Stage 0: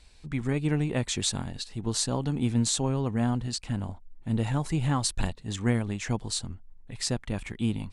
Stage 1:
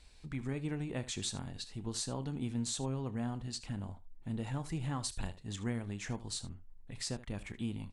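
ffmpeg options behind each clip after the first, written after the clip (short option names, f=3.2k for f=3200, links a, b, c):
-af "acompressor=threshold=-41dB:ratio=1.5,aecho=1:1:30|76:0.168|0.15,volume=-4dB"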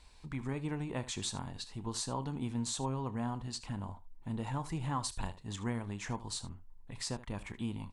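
-af "equalizer=f=980:t=o:w=0.53:g=10"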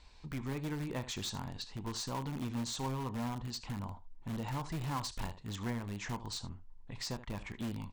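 -filter_complex "[0:a]lowpass=f=6.8k:w=0.5412,lowpass=f=6.8k:w=1.3066,asplit=2[a][b];[b]aeval=exprs='(mod(42.2*val(0)+1,2)-1)/42.2':c=same,volume=-8.5dB[c];[a][c]amix=inputs=2:normalize=0,volume=-2dB"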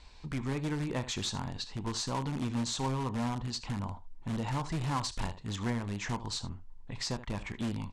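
-af "lowpass=f=10k:w=0.5412,lowpass=f=10k:w=1.3066,volume=4.5dB"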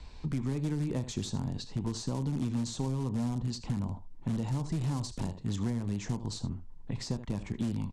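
-filter_complex "[0:a]aresample=32000,aresample=44100,lowshelf=f=450:g=11.5,acrossover=split=110|690|4400[a][b][c][d];[a]acompressor=threshold=-44dB:ratio=4[e];[b]acompressor=threshold=-31dB:ratio=4[f];[c]acompressor=threshold=-52dB:ratio=4[g];[d]acompressor=threshold=-41dB:ratio=4[h];[e][f][g][h]amix=inputs=4:normalize=0"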